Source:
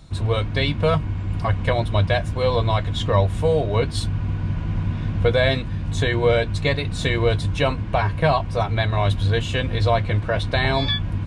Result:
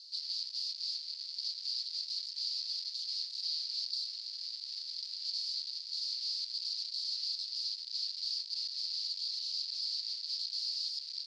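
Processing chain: in parallel at +2 dB: limiter -16 dBFS, peak gain reduction 11 dB; on the sum: wrapped overs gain 19 dB; added noise white -38 dBFS; Butterworth band-pass 4600 Hz, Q 6.1; gain -1 dB

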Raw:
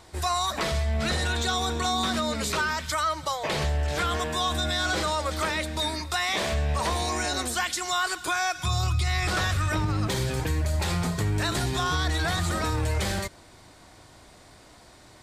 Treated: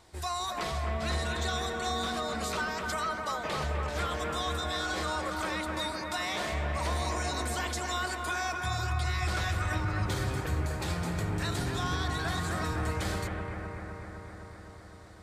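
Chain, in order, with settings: analogue delay 0.255 s, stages 4096, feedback 75%, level -4 dB; gain -7.5 dB

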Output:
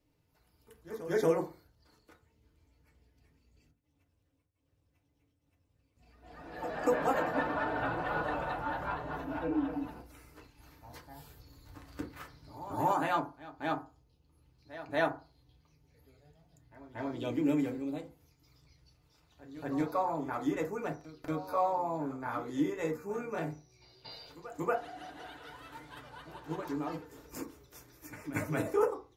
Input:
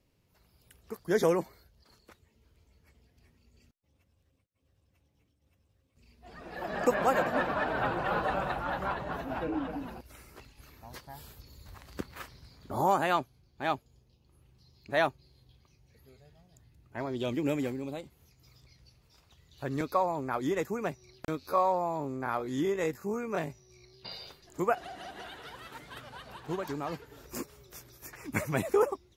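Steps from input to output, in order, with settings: pre-echo 0.234 s -15.5 dB; FDN reverb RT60 0.33 s, low-frequency decay 1×, high-frequency decay 0.35×, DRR 0.5 dB; gain -6.5 dB

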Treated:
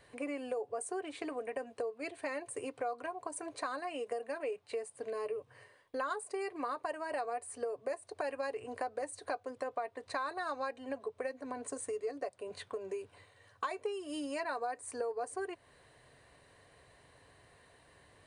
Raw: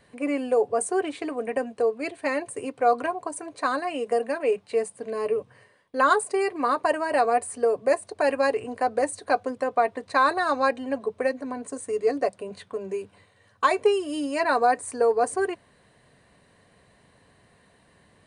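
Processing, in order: bell 200 Hz -13.5 dB 0.55 oct; compressor 4:1, threshold -35 dBFS, peak gain reduction 16.5 dB; gain -2 dB

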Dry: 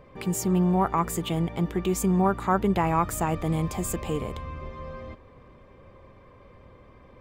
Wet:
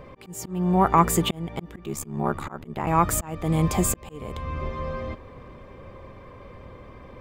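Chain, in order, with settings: 1.85–2.87 ring modulator 35 Hz; auto swell 0.521 s; gain +7.5 dB

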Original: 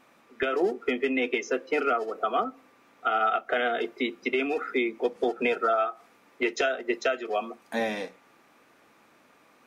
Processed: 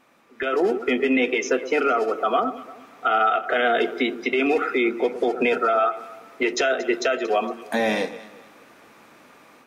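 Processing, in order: limiter -21 dBFS, peak gain reduction 7.5 dB; AGC gain up to 9 dB; on a send: echo with dull and thin repeats by turns 0.115 s, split 1100 Hz, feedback 56%, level -12 dB

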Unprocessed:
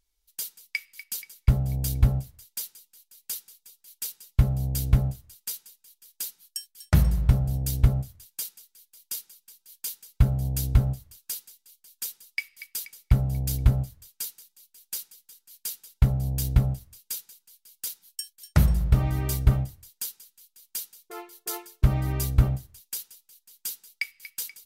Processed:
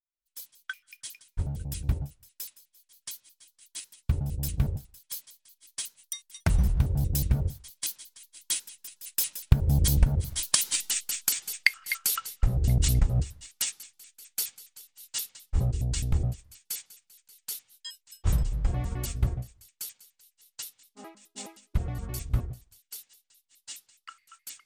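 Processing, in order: trilling pitch shifter -8 st, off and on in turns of 98 ms; Doppler pass-by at 10.78, 23 m/s, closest 3.9 m; recorder AGC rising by 75 dB/s; gain -1 dB

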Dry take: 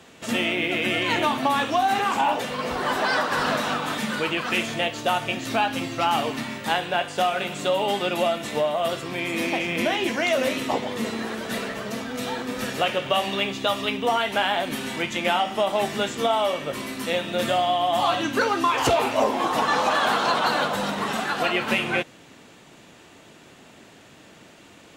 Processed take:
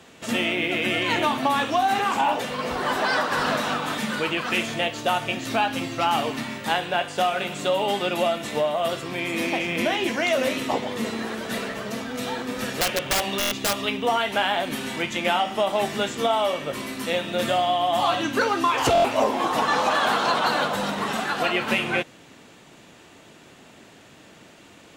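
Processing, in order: 12.79–13.78 wrapped overs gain 15.5 dB; stuck buffer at 13.4/18.93, samples 1024, times 4

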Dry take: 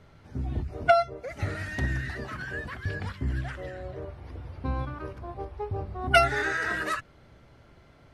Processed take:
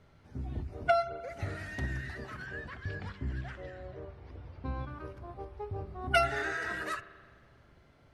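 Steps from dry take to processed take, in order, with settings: 2.46–4.89 LPF 6600 Hz 12 dB/oct; spring tank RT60 1.8 s, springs 41 ms, chirp 30 ms, DRR 14.5 dB; gain -6.5 dB

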